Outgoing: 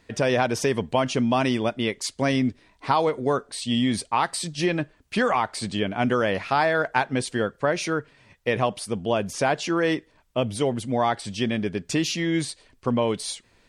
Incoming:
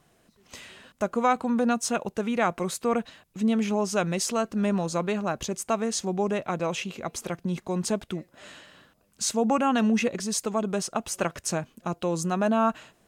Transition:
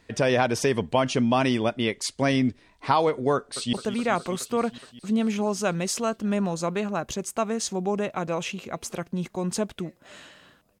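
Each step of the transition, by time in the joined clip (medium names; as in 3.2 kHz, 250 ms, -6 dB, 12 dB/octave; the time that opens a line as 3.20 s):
outgoing
3.35–3.73 s: echo throw 210 ms, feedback 80%, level -11 dB
3.73 s: go over to incoming from 2.05 s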